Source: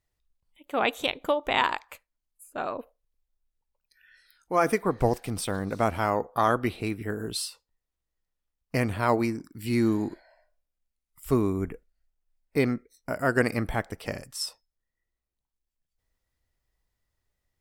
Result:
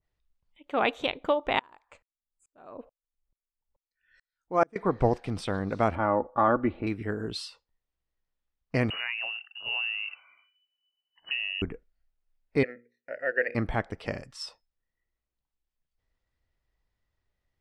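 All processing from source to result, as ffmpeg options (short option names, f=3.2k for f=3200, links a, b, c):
-filter_complex "[0:a]asettb=1/sr,asplit=3[a][b][c];[a]atrim=end=1.594[d];[b]atrim=start=1.59:end=4.76,asetpts=PTS-STARTPTS,afade=t=in:d=0.004:c=qsin,afade=t=out:st=3.166:d=0.004:c=qsin,lowpass=f=7.8k:t=q:w=4.6,tiltshelf=f=1.5k:g=5,aeval=exprs='val(0)*pow(10,-38*if(lt(mod(-2.3*n/s,1),2*abs(-2.3)/1000),1-mod(-2.3*n/s,1)/(2*abs(-2.3)/1000),(mod(-2.3*n/s,1)-2*abs(-2.3)/1000)/(1-2*abs(-2.3)/1000))/20)':c=same[e];[c]atrim=start=4.756[f];[d][e]acrossfade=d=0.004:c1=hsin:c2=qsin[g];[g][f]acrossfade=d=0.004:c1=qsin:c2=hsin,asettb=1/sr,asplit=3[h][i][j];[h]atrim=end=5.954[k];[i]atrim=start=5.95:end=6.87,asetpts=PTS-STARTPTS,afade=t=in:d=0.004:c=qsin,afade=t=out:st=0.916:d=0.004:c=qsin,lowpass=1.6k,aecho=1:1:3.5:0.52,atrim=end_sample=40572[l];[j]atrim=start=6.866[m];[k][l]acrossfade=d=0.004:c1=hsin:c2=qsin[n];[n][m]acrossfade=d=0.004:c1=qsin:c2=hsin,asettb=1/sr,asplit=3[o][p][q];[o]atrim=end=8.904[r];[p]atrim=start=8.9:end=11.62,asetpts=PTS-STARTPTS,afade=t=in:d=0.004:c=qsin,afade=t=out:st=2.716:d=0.004:c=qsin,acompressor=threshold=-27dB:ratio=4:attack=3.2:release=140:knee=1:detection=peak,lowpass=f=2.6k:t=q:w=0.5098,lowpass=f=2.6k:t=q:w=0.6013,lowpass=f=2.6k:t=q:w=0.9,lowpass=f=2.6k:t=q:w=2.563,afreqshift=-3000[s];[q]atrim=start=11.616[t];[r][s]acrossfade=d=0.004:c1=hsin:c2=qsin[u];[u][t]acrossfade=d=0.004:c1=qsin:c2=hsin,asettb=1/sr,asplit=3[v][w][x];[v]atrim=end=12.634[y];[w]atrim=start=12.63:end=13.55,asetpts=PTS-STARTPTS,afade=t=in:d=0.004:c=qsin,afade=t=out:st=0.916:d=0.004:c=qsin,asplit=3[z][aa][ab];[z]bandpass=f=530:t=q:w=8,volume=0dB[ac];[aa]bandpass=f=1.84k:t=q:w=8,volume=-6dB[ad];[ab]bandpass=f=2.48k:t=q:w=8,volume=-9dB[ae];[ac][ad][ae]amix=inputs=3:normalize=0,equalizer=f=1.8k:w=0.85:g=11.5,bandreject=f=60:t=h:w=6,bandreject=f=120:t=h:w=6,bandreject=f=180:t=h:w=6,bandreject=f=240:t=h:w=6,bandreject=f=300:t=h:w=6,bandreject=f=360:t=h:w=6,bandreject=f=420:t=h:w=6,bandreject=f=480:t=h:w=6[af];[x]atrim=start=13.546[ag];[y][af]acrossfade=d=0.004:c1=hsin:c2=qsin[ah];[ah][ag]acrossfade=d=0.004:c1=qsin:c2=hsin,lowpass=4.2k,adynamicequalizer=threshold=0.0141:dfrequency=1600:dqfactor=0.7:tfrequency=1600:tqfactor=0.7:attack=5:release=100:ratio=0.375:range=2:mode=cutabove:tftype=highshelf"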